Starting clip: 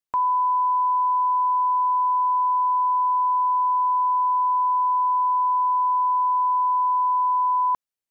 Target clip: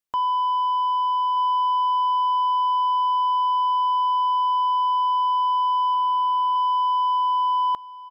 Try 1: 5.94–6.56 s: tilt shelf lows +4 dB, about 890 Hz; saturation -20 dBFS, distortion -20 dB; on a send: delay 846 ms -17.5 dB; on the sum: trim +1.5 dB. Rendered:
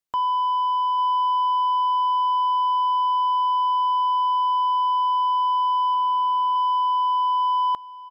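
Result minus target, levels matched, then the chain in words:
echo 384 ms early
5.94–6.56 s: tilt shelf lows +4 dB, about 890 Hz; saturation -20 dBFS, distortion -20 dB; on a send: delay 1230 ms -17.5 dB; on the sum: trim +1.5 dB

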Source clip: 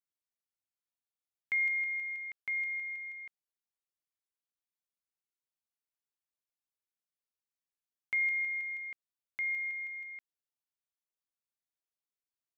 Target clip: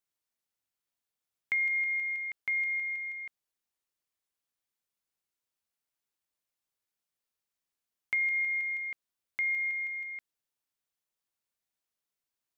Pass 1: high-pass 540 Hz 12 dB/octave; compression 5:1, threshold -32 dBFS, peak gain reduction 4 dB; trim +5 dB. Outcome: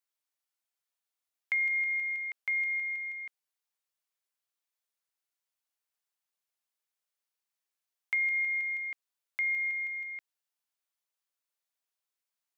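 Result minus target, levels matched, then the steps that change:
500 Hz band -3.5 dB
remove: high-pass 540 Hz 12 dB/octave

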